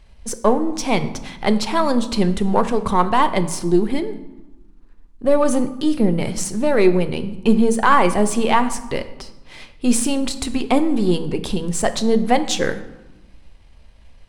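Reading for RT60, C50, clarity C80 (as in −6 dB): 1.1 s, 13.5 dB, 15.5 dB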